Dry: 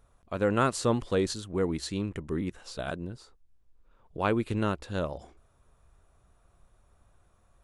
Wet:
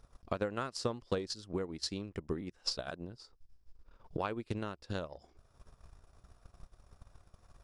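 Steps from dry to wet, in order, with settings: high shelf 6900 Hz -4.5 dB; compressor 2:1, threshold -50 dBFS, peak gain reduction 16.5 dB; bell 5100 Hz +13 dB 0.4 oct; transient shaper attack +10 dB, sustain -8 dB; gain +1 dB

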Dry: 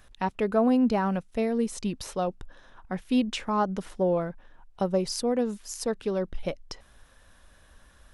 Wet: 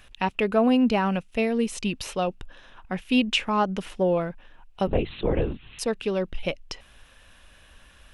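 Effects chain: 4.87–5.79 LPC vocoder at 8 kHz whisper; bell 2700 Hz +11.5 dB 0.67 oct; gain +2 dB

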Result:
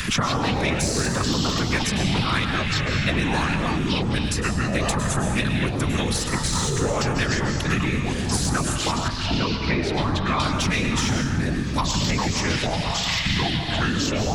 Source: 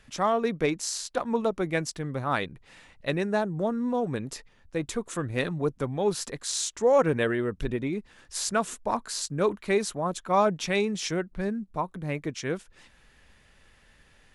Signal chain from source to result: band shelf 530 Hz -10 dB; in parallel at -1 dB: negative-ratio compressor -35 dBFS; on the sum: added harmonics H 3 -18 dB, 7 -36 dB, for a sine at -8 dBFS; whisperiser; plate-style reverb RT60 0.68 s, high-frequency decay 0.95×, pre-delay 90 ms, DRR 6.5 dB; echoes that change speed 95 ms, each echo -6 st, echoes 3; 9.08–10.4 air absorption 320 m; three-band squash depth 100%; gain +6.5 dB

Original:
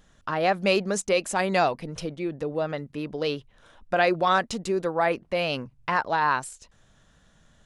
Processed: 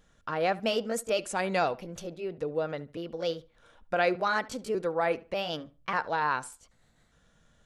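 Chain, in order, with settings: trilling pitch shifter +2 st, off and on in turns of 0.593 s; small resonant body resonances 480/1400/2300 Hz, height 6 dB; tape echo 72 ms, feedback 24%, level -18.5 dB, low-pass 3000 Hz; gain -5.5 dB

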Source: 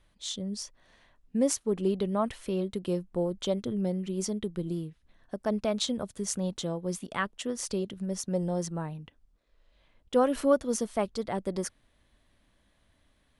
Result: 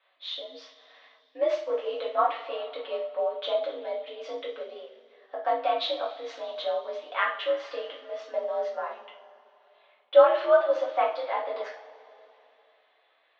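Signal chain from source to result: two-slope reverb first 0.4 s, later 2.9 s, from -21 dB, DRR -6 dB; mistuned SSB +65 Hz 470–3600 Hz

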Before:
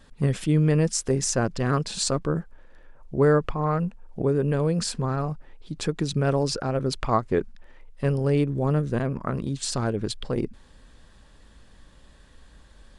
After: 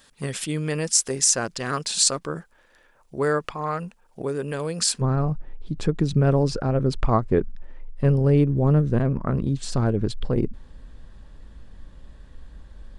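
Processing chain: tilt +3 dB/oct, from 5 s -2 dB/oct

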